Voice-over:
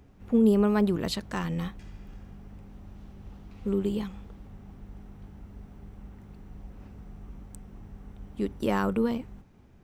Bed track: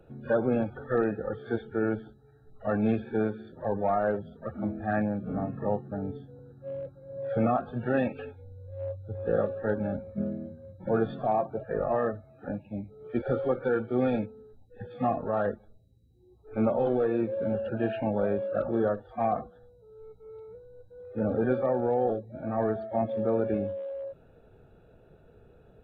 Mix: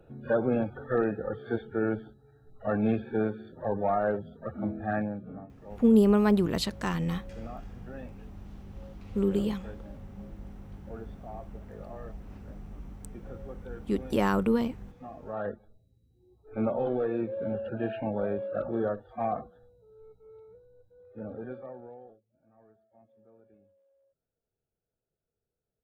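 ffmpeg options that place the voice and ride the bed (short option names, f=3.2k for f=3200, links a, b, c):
-filter_complex "[0:a]adelay=5500,volume=1dB[a];[1:a]volume=14dB,afade=t=out:st=4.83:d=0.65:silence=0.141254,afade=t=in:st=15.11:d=0.48:silence=0.188365,afade=t=out:st=19.53:d=2.67:silence=0.0316228[b];[a][b]amix=inputs=2:normalize=0"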